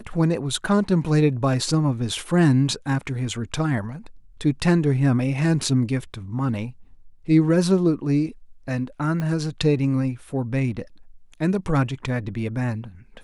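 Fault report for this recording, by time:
9.20 s: pop -16 dBFS

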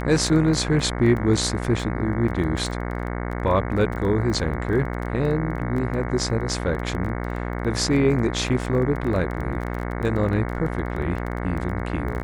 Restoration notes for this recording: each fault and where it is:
buzz 60 Hz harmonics 37 -28 dBFS
crackle 17 per s -29 dBFS

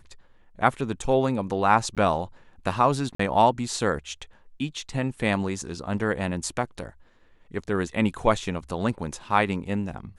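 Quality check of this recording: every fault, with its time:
1.95–1.97 s: dropout
3.15–3.19 s: dropout 44 ms

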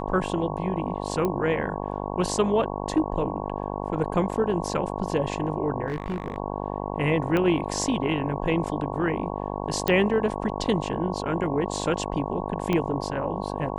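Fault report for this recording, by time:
buzz 50 Hz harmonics 22 -31 dBFS
1.25 s: pop -14 dBFS
5.88–6.38 s: clipped -24 dBFS
7.37 s: pop -13 dBFS
9.88 s: pop -9 dBFS
12.73 s: pop -12 dBFS

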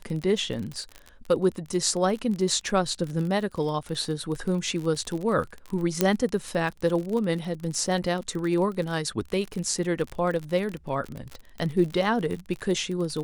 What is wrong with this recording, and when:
crackle 38 per s -30 dBFS
6.01 s: pop -5 dBFS

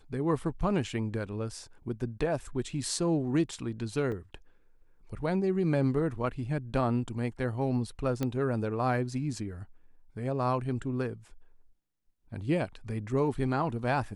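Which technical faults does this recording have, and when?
4.12 s: dropout 4.1 ms
8.23 s: pop -17 dBFS

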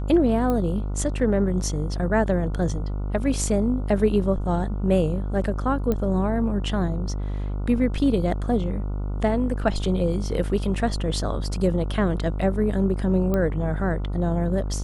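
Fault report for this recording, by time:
buzz 50 Hz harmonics 29 -27 dBFS
0.50 s: pop -14 dBFS
5.92 s: pop -13 dBFS
13.34 s: pop -13 dBFS

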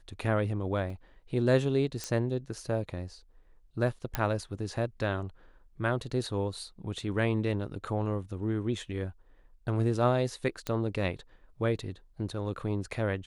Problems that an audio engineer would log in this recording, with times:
0.90 s: dropout 3.1 ms
2.04 s: pop -18 dBFS
4.15 s: pop -13 dBFS
10.67 s: pop -18 dBFS

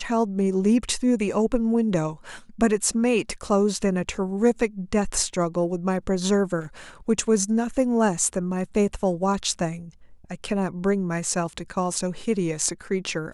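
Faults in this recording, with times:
6.60–6.89 s: clipped -32 dBFS

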